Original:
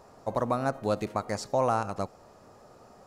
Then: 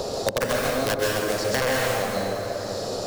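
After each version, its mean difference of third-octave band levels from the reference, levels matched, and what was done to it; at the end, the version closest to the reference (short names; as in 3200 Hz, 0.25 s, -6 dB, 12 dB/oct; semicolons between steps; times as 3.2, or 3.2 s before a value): 14.5 dB: graphic EQ 500/1000/2000/4000 Hz +10/-6/-7/+12 dB; wrapped overs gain 14 dB; plate-style reverb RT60 1.6 s, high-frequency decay 0.65×, pre-delay 0.115 s, DRR -5 dB; three-band squash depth 100%; gain -5.5 dB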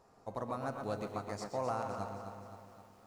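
5.5 dB: notch 580 Hz, Q 14; resonator 100 Hz, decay 1.5 s, harmonics all, mix 60%; on a send: tape echo 0.122 s, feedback 57%, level -5.5 dB, low-pass 4000 Hz; on the sum: lo-fi delay 0.26 s, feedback 55%, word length 10-bit, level -9.5 dB; gain -3.5 dB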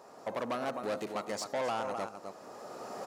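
8.0 dB: recorder AGC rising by 14 dB/s; echo 0.258 s -11 dB; soft clip -29 dBFS, distortion -7 dB; HPF 260 Hz 12 dB/oct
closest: second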